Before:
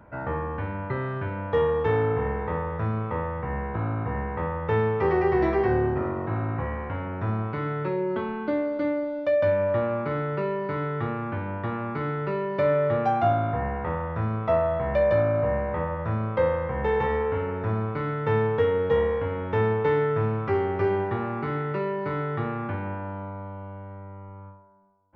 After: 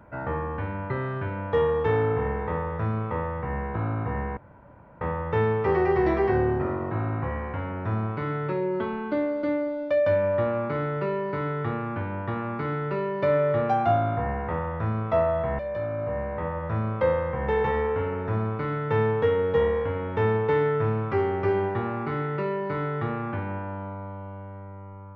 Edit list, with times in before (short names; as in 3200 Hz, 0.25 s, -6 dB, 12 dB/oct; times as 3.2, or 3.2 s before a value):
4.37 insert room tone 0.64 s
14.95–16.13 fade in, from -12.5 dB